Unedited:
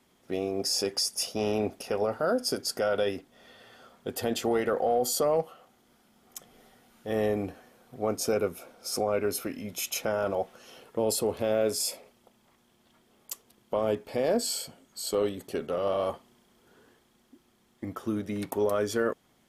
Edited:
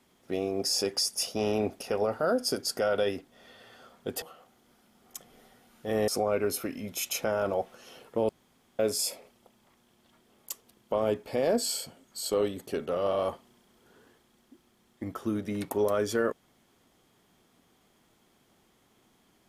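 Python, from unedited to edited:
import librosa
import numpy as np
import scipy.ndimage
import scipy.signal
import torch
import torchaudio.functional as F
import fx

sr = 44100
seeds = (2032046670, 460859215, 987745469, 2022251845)

y = fx.edit(x, sr, fx.cut(start_s=4.22, length_s=1.21),
    fx.cut(start_s=7.29, length_s=1.6),
    fx.room_tone_fill(start_s=11.1, length_s=0.5), tone=tone)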